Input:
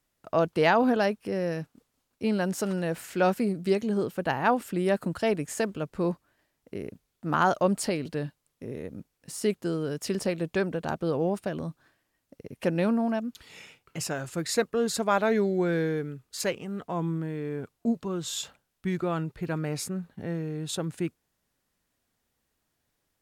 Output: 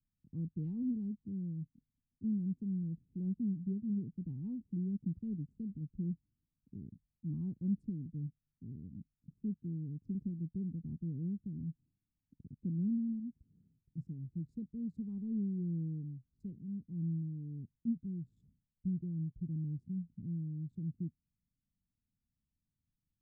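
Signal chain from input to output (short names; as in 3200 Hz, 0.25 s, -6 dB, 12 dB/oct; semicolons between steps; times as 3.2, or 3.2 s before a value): Wiener smoothing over 25 samples; inverse Chebyshev low-pass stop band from 580 Hz, stop band 50 dB; gain -4 dB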